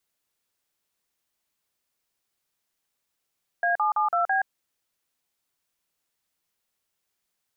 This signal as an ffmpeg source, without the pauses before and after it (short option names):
-f lavfi -i "aevalsrc='0.0708*clip(min(mod(t,0.166),0.124-mod(t,0.166))/0.002,0,1)*(eq(floor(t/0.166),0)*(sin(2*PI*697*mod(t,0.166))+sin(2*PI*1633*mod(t,0.166)))+eq(floor(t/0.166),1)*(sin(2*PI*852*mod(t,0.166))+sin(2*PI*1209*mod(t,0.166)))+eq(floor(t/0.166),2)*(sin(2*PI*852*mod(t,0.166))+sin(2*PI*1209*mod(t,0.166)))+eq(floor(t/0.166),3)*(sin(2*PI*697*mod(t,0.166))+sin(2*PI*1336*mod(t,0.166)))+eq(floor(t/0.166),4)*(sin(2*PI*770*mod(t,0.166))+sin(2*PI*1633*mod(t,0.166))))':d=0.83:s=44100"